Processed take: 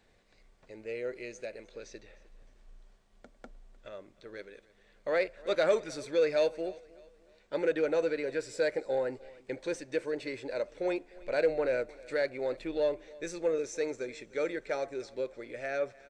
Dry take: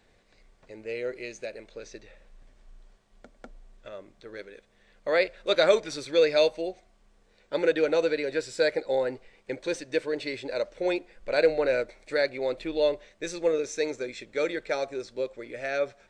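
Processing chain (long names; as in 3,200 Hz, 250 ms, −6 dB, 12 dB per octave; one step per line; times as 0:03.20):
dynamic equaliser 3,700 Hz, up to −7 dB, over −48 dBFS, Q 1.4
in parallel at −4.5 dB: soft clipping −22.5 dBFS, distortion −11 dB
on the sum: repeating echo 305 ms, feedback 39%, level −22 dB
level −7.5 dB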